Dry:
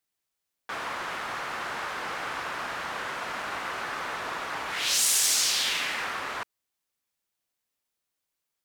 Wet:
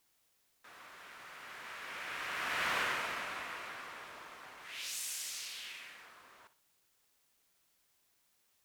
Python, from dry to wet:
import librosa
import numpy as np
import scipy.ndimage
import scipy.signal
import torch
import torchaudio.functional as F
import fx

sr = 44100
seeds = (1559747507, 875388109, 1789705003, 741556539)

p1 = fx.doppler_pass(x, sr, speed_mps=24, closest_m=5.5, pass_at_s=2.74)
p2 = fx.high_shelf(p1, sr, hz=9100.0, db=10.0)
p3 = fx.notch(p2, sr, hz=830.0, q=15.0)
p4 = fx.quant_dither(p3, sr, seeds[0], bits=12, dither='triangular')
p5 = p4 + fx.echo_feedback(p4, sr, ms=60, feedback_pct=35, wet_db=-14.5, dry=0)
p6 = fx.dynamic_eq(p5, sr, hz=2400.0, q=1.3, threshold_db=-55.0, ratio=4.0, max_db=7)
y = p6 * 10.0 ** (-2.5 / 20.0)